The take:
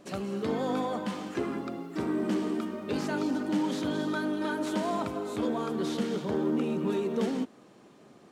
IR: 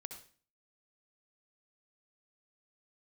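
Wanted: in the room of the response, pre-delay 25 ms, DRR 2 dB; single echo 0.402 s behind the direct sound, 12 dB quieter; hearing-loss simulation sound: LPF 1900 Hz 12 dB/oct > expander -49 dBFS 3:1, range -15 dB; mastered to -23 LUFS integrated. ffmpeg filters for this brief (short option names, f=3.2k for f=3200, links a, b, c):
-filter_complex "[0:a]aecho=1:1:402:0.251,asplit=2[a][b];[1:a]atrim=start_sample=2205,adelay=25[c];[b][c]afir=irnorm=-1:irlink=0,volume=2dB[d];[a][d]amix=inputs=2:normalize=0,lowpass=1.9k,agate=range=-15dB:threshold=-49dB:ratio=3,volume=6.5dB"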